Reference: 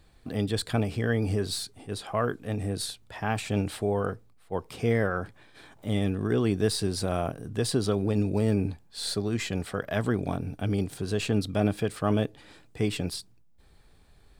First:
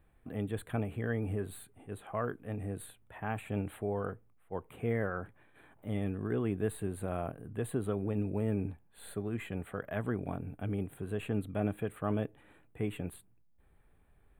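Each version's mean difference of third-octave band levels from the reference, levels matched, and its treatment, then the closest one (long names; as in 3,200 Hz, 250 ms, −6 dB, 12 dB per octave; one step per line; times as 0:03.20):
3.0 dB: Butterworth band-reject 5,300 Hz, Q 0.71
level −7.5 dB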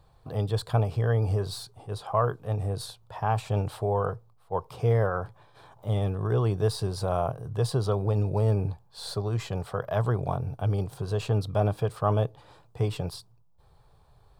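5.0 dB: octave-band graphic EQ 125/250/500/1,000/2,000/8,000 Hz +11/−12/+5/+11/−9/−5 dB
level −3 dB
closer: first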